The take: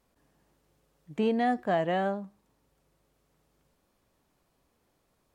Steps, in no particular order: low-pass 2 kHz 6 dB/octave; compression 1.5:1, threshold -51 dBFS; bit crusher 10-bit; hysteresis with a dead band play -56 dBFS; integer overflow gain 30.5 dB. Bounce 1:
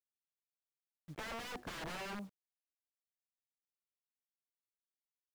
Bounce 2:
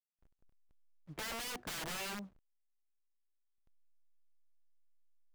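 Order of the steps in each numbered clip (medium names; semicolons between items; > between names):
integer overflow > low-pass > hysteresis with a dead band > bit crusher > compression; bit crusher > low-pass > integer overflow > compression > hysteresis with a dead band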